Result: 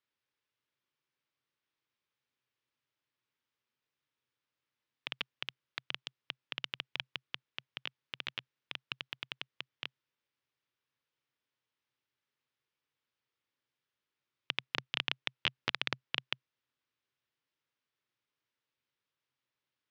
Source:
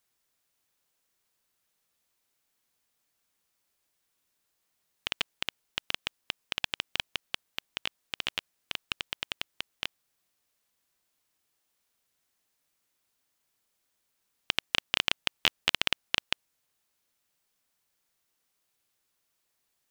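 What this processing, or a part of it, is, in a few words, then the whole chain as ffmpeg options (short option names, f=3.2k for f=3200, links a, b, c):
ring modulator pedal into a guitar cabinet: -af "aeval=exprs='val(0)*sgn(sin(2*PI*150*n/s))':c=same,highpass=95,equalizer=f=130:t=q:w=4:g=9,equalizer=f=180:t=q:w=4:g=-8,equalizer=f=710:t=q:w=4:g=-9,equalizer=f=4.3k:t=q:w=4:g=-4,lowpass=f=4.6k:w=0.5412,lowpass=f=4.6k:w=1.3066,volume=-6dB"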